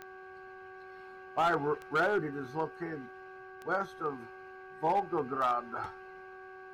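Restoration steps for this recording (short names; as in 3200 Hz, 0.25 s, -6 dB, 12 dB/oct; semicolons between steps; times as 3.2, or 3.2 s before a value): clip repair -22.5 dBFS; de-click; de-hum 377.4 Hz, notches 4; notch 1600 Hz, Q 30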